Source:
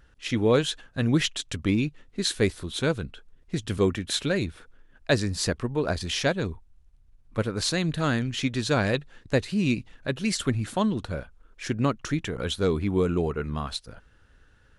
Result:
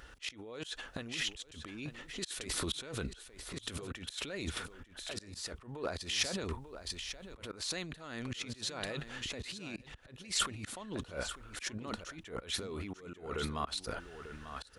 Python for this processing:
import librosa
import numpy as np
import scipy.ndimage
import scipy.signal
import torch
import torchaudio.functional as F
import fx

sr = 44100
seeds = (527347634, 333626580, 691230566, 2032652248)

y = fx.over_compress(x, sr, threshold_db=-35.0, ratio=-1.0)
y = fx.peak_eq(y, sr, hz=120.0, db=-12.0, octaves=2.4)
y = y + 10.0 ** (-11.5 / 20.0) * np.pad(y, (int(893 * sr / 1000.0), 0))[:len(y)]
y = fx.auto_swell(y, sr, attack_ms=254.0)
y = scipy.signal.sosfilt(scipy.signal.butter(2, 41.0, 'highpass', fs=sr, output='sos'), y)
y = fx.notch(y, sr, hz=1600.0, q=17.0)
y = y * 10.0 ** (2.5 / 20.0)